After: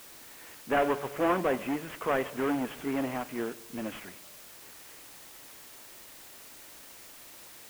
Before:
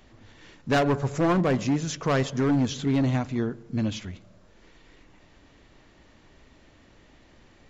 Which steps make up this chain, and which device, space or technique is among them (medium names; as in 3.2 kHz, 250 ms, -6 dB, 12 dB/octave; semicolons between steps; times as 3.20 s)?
army field radio (band-pass 390–3000 Hz; CVSD coder 16 kbps; white noise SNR 16 dB)